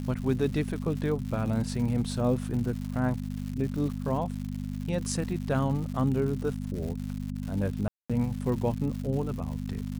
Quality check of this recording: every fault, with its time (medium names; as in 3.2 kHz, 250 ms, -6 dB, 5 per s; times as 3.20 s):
crackle 200 per s -36 dBFS
hum 50 Hz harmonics 5 -34 dBFS
7.88–8.10 s: dropout 216 ms